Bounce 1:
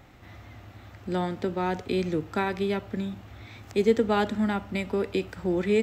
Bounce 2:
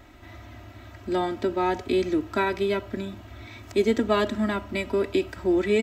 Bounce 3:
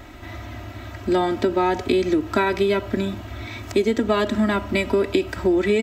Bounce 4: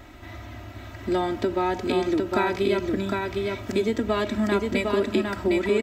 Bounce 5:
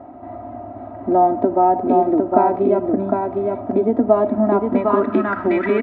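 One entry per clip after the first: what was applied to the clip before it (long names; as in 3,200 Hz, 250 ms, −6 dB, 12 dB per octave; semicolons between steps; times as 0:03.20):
comb filter 3.1 ms, depth 77%; level +1 dB
downward compressor, threshold −25 dBFS, peak gain reduction 8.5 dB; level +9 dB
single-tap delay 757 ms −3.5 dB; level −4.5 dB
low-pass filter sweep 760 Hz → 1,700 Hz, 0:04.42–0:05.58; loudspeaker in its box 120–7,500 Hz, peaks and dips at 260 Hz +9 dB, 700 Hz +7 dB, 1,200 Hz +4 dB; level +2.5 dB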